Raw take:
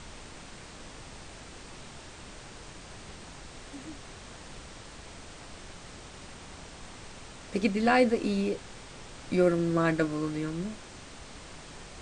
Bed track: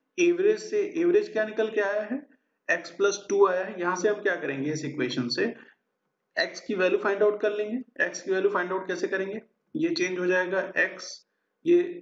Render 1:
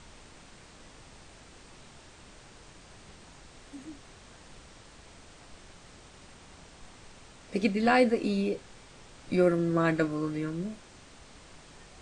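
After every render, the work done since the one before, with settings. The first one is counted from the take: noise print and reduce 6 dB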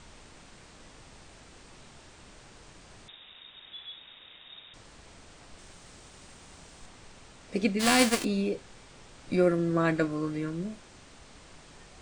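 3.08–4.74 s: frequency inversion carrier 3.7 kHz; 5.58–6.86 s: treble shelf 8.2 kHz +9 dB; 7.79–8.23 s: formants flattened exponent 0.3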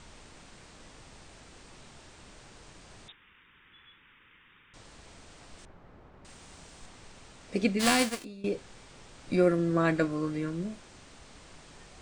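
3.12–4.74 s: static phaser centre 1.6 kHz, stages 4; 5.65–6.25 s: low-pass 1.3 kHz; 7.87–8.44 s: fade out quadratic, to -18.5 dB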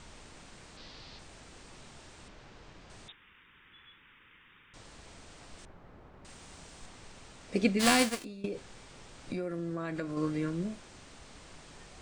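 0.77–1.19 s: resonant low-pass 4.4 kHz, resonance Q 3.3; 2.28–2.90 s: distance through air 120 m; 8.45–10.17 s: compression, threshold -32 dBFS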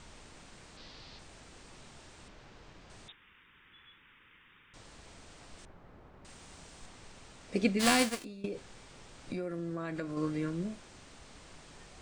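trim -1.5 dB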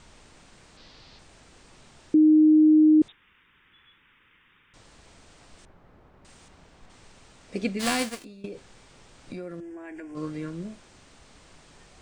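2.14–3.02 s: bleep 309 Hz -13 dBFS; 6.48–6.90 s: peaking EQ 12 kHz -15 dB 2 oct; 9.60–10.15 s: static phaser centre 820 Hz, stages 8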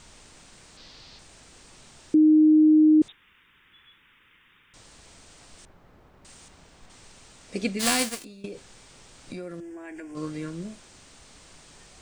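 treble shelf 4.3 kHz +9 dB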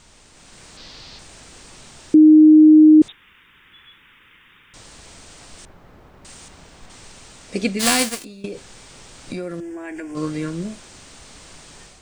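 level rider gain up to 8 dB

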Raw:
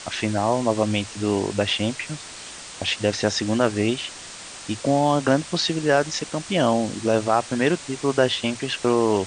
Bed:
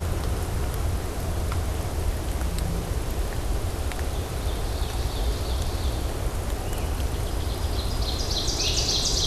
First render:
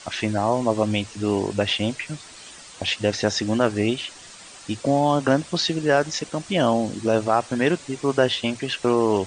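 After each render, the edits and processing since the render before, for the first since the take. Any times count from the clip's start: noise reduction 8 dB, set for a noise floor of -39 dBFS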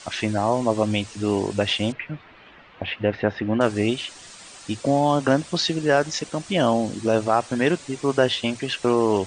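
1.92–3.61 s: low-pass 2.6 kHz 24 dB/octave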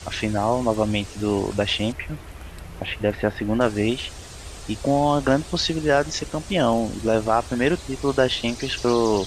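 add bed -12 dB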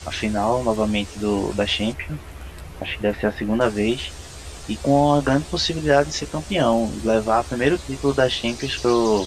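doubling 14 ms -5 dB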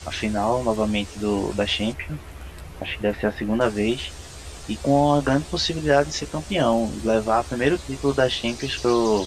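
trim -1.5 dB

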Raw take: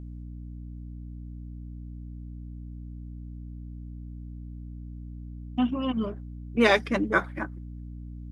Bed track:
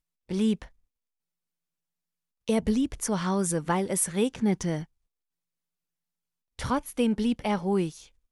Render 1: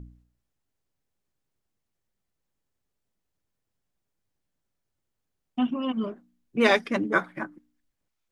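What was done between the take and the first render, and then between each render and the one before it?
de-hum 60 Hz, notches 5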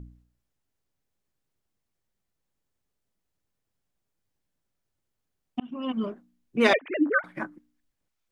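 5.60–6.07 s: fade in equal-power; 6.73–7.24 s: formants replaced by sine waves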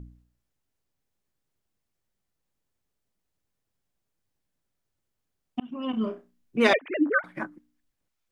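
5.90–6.58 s: flutter echo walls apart 5.5 m, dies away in 0.25 s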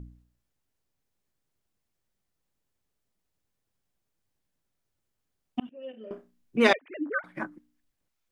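5.69–6.11 s: vowel filter e; 6.73–7.47 s: fade in quadratic, from -13 dB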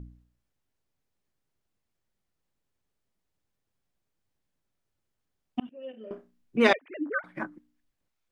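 treble shelf 6 kHz -6 dB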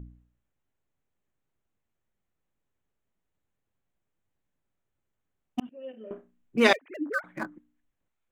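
local Wiener filter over 9 samples; treble shelf 4.9 kHz +11.5 dB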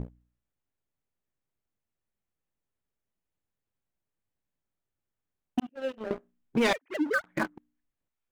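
waveshaping leveller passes 3; compression 3:1, threshold -27 dBFS, peak gain reduction 13 dB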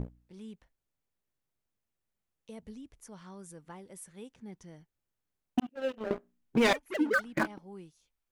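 add bed track -21.5 dB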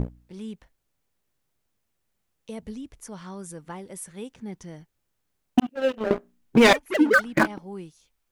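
trim +9.5 dB

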